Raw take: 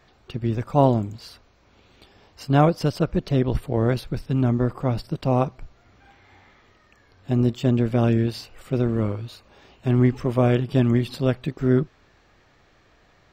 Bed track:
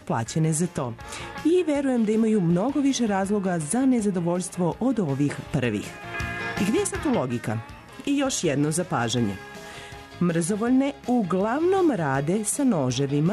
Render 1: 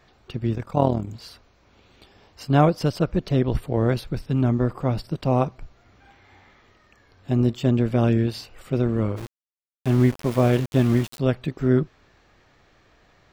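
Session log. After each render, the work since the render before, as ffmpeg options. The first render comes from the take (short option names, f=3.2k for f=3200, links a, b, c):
-filter_complex "[0:a]asplit=3[a][b][c];[a]afade=t=out:st=0.53:d=0.02[d];[b]tremolo=f=40:d=0.71,afade=t=in:st=0.53:d=0.02,afade=t=out:st=1.07:d=0.02[e];[c]afade=t=in:st=1.07:d=0.02[f];[d][e][f]amix=inputs=3:normalize=0,asplit=3[g][h][i];[g]afade=t=out:st=9.16:d=0.02[j];[h]aeval=exprs='val(0)*gte(abs(val(0)),0.0316)':c=same,afade=t=in:st=9.16:d=0.02,afade=t=out:st=11.18:d=0.02[k];[i]afade=t=in:st=11.18:d=0.02[l];[j][k][l]amix=inputs=3:normalize=0"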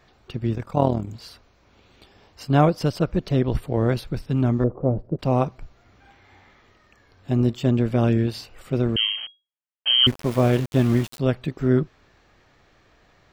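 -filter_complex "[0:a]asettb=1/sr,asplit=3[a][b][c];[a]atrim=end=4.644[d];[b]atrim=start=4.64:end=5.19,asetpts=PTS-STARTPTS,afade=t=in:d=0.004:c=qsin,afade=t=out:st=0.546:d=0.004:c=qsin,lowpass=f=520:t=q:w=1.8[e];[c]atrim=start=5.186[f];[d][e]acrossfade=d=0.004:c1=hsin:c2=qsin[g];[g][f]acrossfade=d=0.004:c1=qsin:c2=hsin,asettb=1/sr,asplit=3[h][i][j];[h]atrim=end=8.964[k];[i]atrim=start=8.96:end=10.07,asetpts=PTS-STARTPTS,afade=t=in:d=0.004:c=qsin,afade=t=out:st=1.106:d=0.004:c=qsin,lowpass=f=2.8k:t=q:w=0.5098,lowpass=f=2.8k:t=q:w=0.6013,lowpass=f=2.8k:t=q:w=0.9,lowpass=f=2.8k:t=q:w=2.563,afreqshift=-3300[l];[j]atrim=start=10.066[m];[k][l]acrossfade=d=0.004:c1=hsin:c2=qsin[n];[n][m]acrossfade=d=0.004:c1=qsin:c2=hsin"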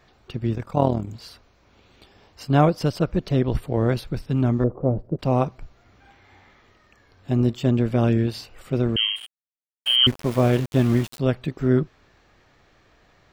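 -filter_complex "[0:a]asettb=1/sr,asplit=3[a][b][c];[a]atrim=end=9.164[d];[b]atrim=start=9.16:end=9.96,asetpts=PTS-STARTPTS,afade=t=in:d=0.004:c=qsin,afade=t=out:st=0.796:d=0.004:c=qsin,aeval=exprs='sgn(val(0))*max(abs(val(0))-0.0168,0)':c=same[e];[c]atrim=start=9.956[f];[d][e]acrossfade=d=0.004:c1=hsin:c2=qsin[g];[g][f]acrossfade=d=0.004:c1=qsin:c2=hsin"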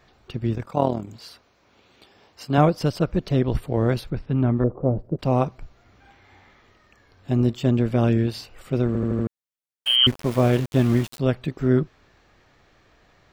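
-filter_complex "[0:a]asettb=1/sr,asplit=3[a][b][c];[a]atrim=end=0.664[d];[b]atrim=start=0.66:end=2.58,asetpts=PTS-STARTPTS,afade=t=in:d=0.004:c=qsin,afade=t=out:st=1.916:d=0.004:c=qsin,highpass=f=200:p=1[e];[c]atrim=start=2.576[f];[d][e]acrossfade=d=0.004:c1=hsin:c2=qsin[g];[g][f]acrossfade=d=0.004:c1=qsin:c2=hsin,asettb=1/sr,asplit=3[h][i][j];[h]atrim=end=4.104[k];[i]atrim=start=4.1:end=4.96,asetpts=PTS-STARTPTS,afade=t=in:d=0.004:c=qsin,afade=t=out:st=0.856:d=0.004:c=qsin,lowpass=2.6k[l];[j]atrim=start=4.956[m];[k][l]acrossfade=d=0.004:c1=hsin:c2=qsin[n];[n][m]acrossfade=d=0.004:c1=qsin:c2=hsin,asplit=6[o][p][q][r][s][t];[o]atrim=end=8.952[u];[p]atrim=start=8.868:end=8.952[v];[q]atrim=start=8.868:end=8.952[w];[r]atrim=start=8.868:end=8.952[x];[s]atrim=start=8.868:end=8.952[y];[t]atrim=start=9.268[z];[u][v]acrossfade=d=0.004:c1=hsin:c2=hsin[aa];[aa][w]acrossfade=d=0.004:c1=hsin:c2=hsin[ab];[ab][x]acrossfade=d=0.004:c1=hsin:c2=hsin[ac];[ac][y]acrossfade=d=0.004:c1=hsin:c2=hsin[ad];[ad][z]acrossfade=d=0.004:c1=hsin:c2=hsin"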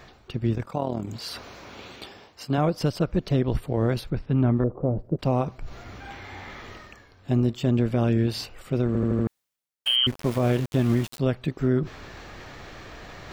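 -af "alimiter=limit=-13.5dB:level=0:latency=1:release=157,areverse,acompressor=mode=upward:threshold=-27dB:ratio=2.5,areverse"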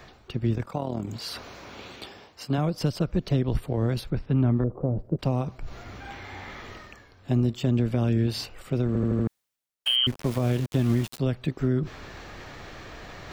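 -filter_complex "[0:a]acrossover=split=240|3000[a][b][c];[b]acompressor=threshold=-27dB:ratio=6[d];[a][d][c]amix=inputs=3:normalize=0"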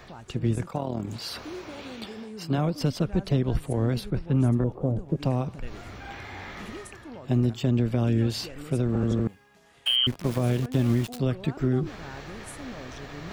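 -filter_complex "[1:a]volume=-19dB[a];[0:a][a]amix=inputs=2:normalize=0"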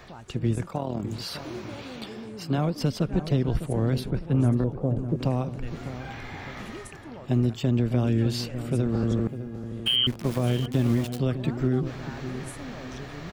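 -filter_complex "[0:a]asplit=2[a][b];[b]adelay=604,lowpass=f=1.1k:p=1,volume=-10.5dB,asplit=2[c][d];[d]adelay=604,lowpass=f=1.1k:p=1,volume=0.41,asplit=2[e][f];[f]adelay=604,lowpass=f=1.1k:p=1,volume=0.41,asplit=2[g][h];[h]adelay=604,lowpass=f=1.1k:p=1,volume=0.41[i];[a][c][e][g][i]amix=inputs=5:normalize=0"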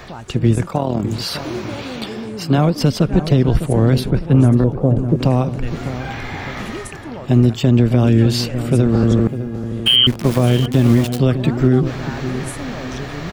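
-af "volume=11dB,alimiter=limit=-3dB:level=0:latency=1"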